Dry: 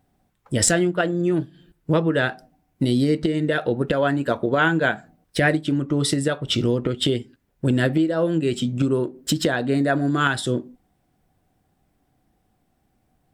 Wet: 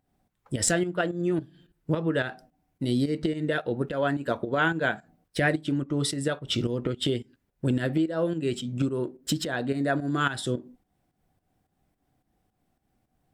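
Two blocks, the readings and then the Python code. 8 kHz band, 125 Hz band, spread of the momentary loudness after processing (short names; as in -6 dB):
-6.0 dB, -6.0 dB, 7 LU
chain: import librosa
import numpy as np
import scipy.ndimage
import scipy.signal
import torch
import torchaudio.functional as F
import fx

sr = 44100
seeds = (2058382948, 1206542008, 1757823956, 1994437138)

y = fx.volume_shaper(x, sr, bpm=108, per_beat=2, depth_db=-10, release_ms=191.0, shape='fast start')
y = y * 10.0 ** (-5.0 / 20.0)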